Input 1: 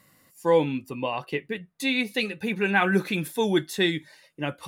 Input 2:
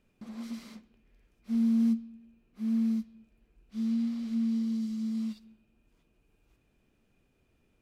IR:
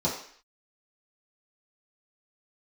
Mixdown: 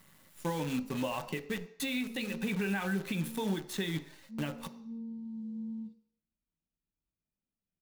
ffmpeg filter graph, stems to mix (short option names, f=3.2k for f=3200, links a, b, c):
-filter_complex "[0:a]acompressor=threshold=-24dB:ratio=16,acrusher=bits=7:dc=4:mix=0:aa=0.000001,volume=0.5dB,asplit=3[a][b][c];[b]volume=-18.5dB[d];[1:a]afwtdn=0.02,adelay=550,volume=-11.5dB,asplit=2[e][f];[f]volume=-13.5dB[g];[c]apad=whole_len=369048[h];[e][h]sidechaincompress=threshold=-49dB:ratio=8:attack=7.2:release=540[i];[2:a]atrim=start_sample=2205[j];[d][g]amix=inputs=2:normalize=0[k];[k][j]afir=irnorm=-1:irlink=0[l];[a][i][l]amix=inputs=3:normalize=0,alimiter=limit=-24dB:level=0:latency=1:release=457"